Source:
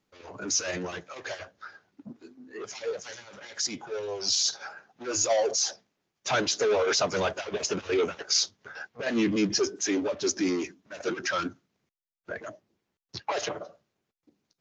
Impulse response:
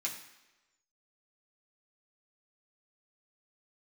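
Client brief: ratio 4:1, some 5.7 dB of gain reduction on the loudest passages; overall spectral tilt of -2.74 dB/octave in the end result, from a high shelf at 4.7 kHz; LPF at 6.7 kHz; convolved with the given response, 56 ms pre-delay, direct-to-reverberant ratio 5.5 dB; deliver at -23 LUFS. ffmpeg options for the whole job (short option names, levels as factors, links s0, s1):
-filter_complex "[0:a]lowpass=6700,highshelf=f=4700:g=-8,acompressor=threshold=0.0398:ratio=4,asplit=2[s0][s1];[1:a]atrim=start_sample=2205,adelay=56[s2];[s1][s2]afir=irnorm=-1:irlink=0,volume=0.422[s3];[s0][s3]amix=inputs=2:normalize=0,volume=3.35"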